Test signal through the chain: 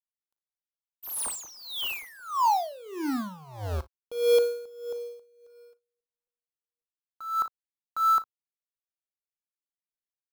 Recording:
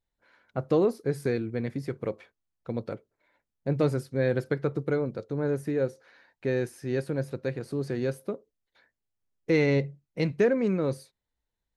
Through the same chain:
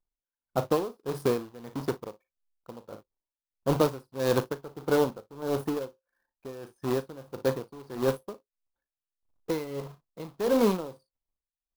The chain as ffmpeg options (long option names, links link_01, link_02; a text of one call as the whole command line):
ffmpeg -i in.wav -af "anlmdn=0.0251,acrusher=bits=2:mode=log:mix=0:aa=0.000001,equalizer=frequency=125:width_type=o:width=1:gain=-5,equalizer=frequency=1000:width_type=o:width=1:gain=9,equalizer=frequency=2000:width_type=o:width=1:gain=-9,equalizer=frequency=8000:width_type=o:width=1:gain=-5,aecho=1:1:38|57:0.2|0.133,aeval=exprs='val(0)*pow(10,-19*(0.5-0.5*cos(2*PI*1.6*n/s))/20)':channel_layout=same,volume=3.5dB" out.wav